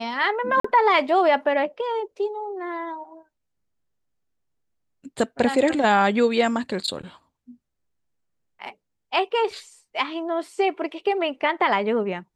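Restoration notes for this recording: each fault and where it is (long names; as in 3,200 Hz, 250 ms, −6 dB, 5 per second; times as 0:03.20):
0:00.60–0:00.64: drop-out 44 ms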